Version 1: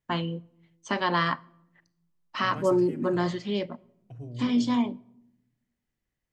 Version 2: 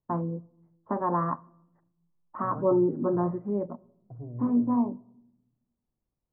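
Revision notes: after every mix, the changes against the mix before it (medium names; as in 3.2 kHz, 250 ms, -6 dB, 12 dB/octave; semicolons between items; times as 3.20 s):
master: add steep low-pass 1.2 kHz 36 dB/octave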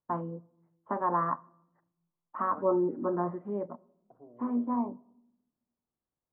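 second voice: add Bessel high-pass 330 Hz, order 4; master: add tilt EQ +3 dB/octave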